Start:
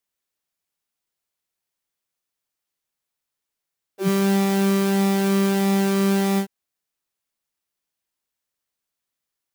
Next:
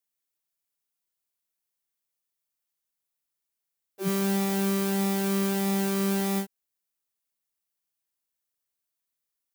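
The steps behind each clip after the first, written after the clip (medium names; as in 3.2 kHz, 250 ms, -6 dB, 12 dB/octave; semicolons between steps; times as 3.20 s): treble shelf 7.8 kHz +9 dB; trim -7 dB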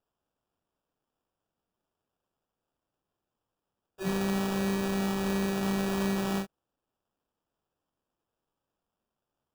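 sample-rate reducer 2.1 kHz, jitter 0%; trim -3 dB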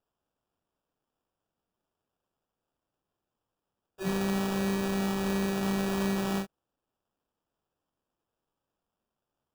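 no audible change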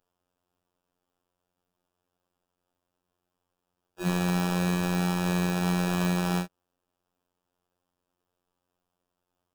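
robot voice 89.1 Hz; trim +5.5 dB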